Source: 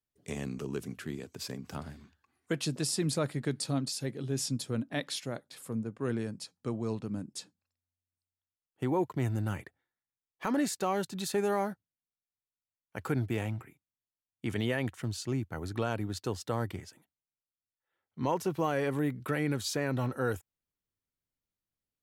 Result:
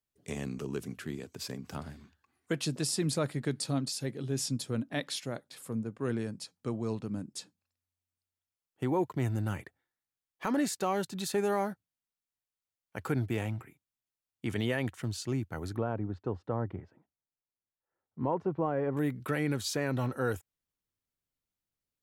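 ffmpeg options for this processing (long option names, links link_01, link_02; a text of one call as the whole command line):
ffmpeg -i in.wav -filter_complex "[0:a]asettb=1/sr,asplit=3[link_01][link_02][link_03];[link_01]atrim=end=15.774[link_04];[link_02]atrim=start=15.77:end=18.97,asetpts=PTS-STARTPTS,afade=type=in:duration=0.004:curve=qsin,afade=type=out:start_time=3.196:duration=0.004:curve=qsin,lowpass=1100[link_05];[link_03]atrim=start=18.966[link_06];[link_04][link_05]acrossfade=duration=0.004:curve1=hsin:curve2=qsin[link_07];[link_07][link_06]acrossfade=duration=0.004:curve1=qsin:curve2=hsin" out.wav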